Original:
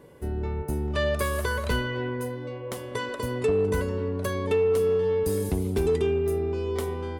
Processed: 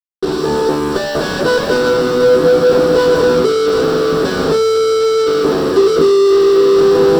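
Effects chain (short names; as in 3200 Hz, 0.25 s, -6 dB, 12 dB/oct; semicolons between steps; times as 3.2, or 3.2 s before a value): opening faded in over 1.94 s; Chebyshev band-pass 320–1800 Hz, order 3; tilt shelf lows +8 dB, about 1500 Hz; in parallel at -2 dB: limiter -22.5 dBFS, peak gain reduction 11.5 dB; on the sum: sample leveller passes 2; compressor, threshold -23 dBFS, peak gain reduction 10.5 dB; fuzz box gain 48 dB, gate -48 dBFS; reverb RT60 0.20 s, pre-delay 3 ms, DRR 0.5 dB; gain -8 dB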